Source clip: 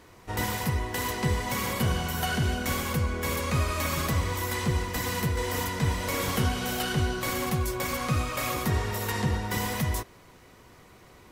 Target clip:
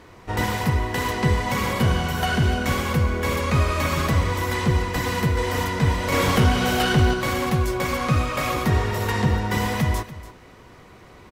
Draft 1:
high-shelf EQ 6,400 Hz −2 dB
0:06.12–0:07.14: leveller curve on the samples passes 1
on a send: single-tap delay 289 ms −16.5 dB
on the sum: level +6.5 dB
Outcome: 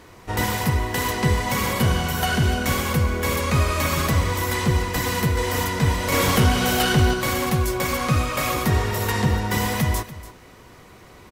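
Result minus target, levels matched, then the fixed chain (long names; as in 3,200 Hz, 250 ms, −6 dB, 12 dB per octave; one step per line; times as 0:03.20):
8,000 Hz band +5.0 dB
high-shelf EQ 6,400 Hz −11.5 dB
0:06.12–0:07.14: leveller curve on the samples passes 1
on a send: single-tap delay 289 ms −16.5 dB
on the sum: level +6.5 dB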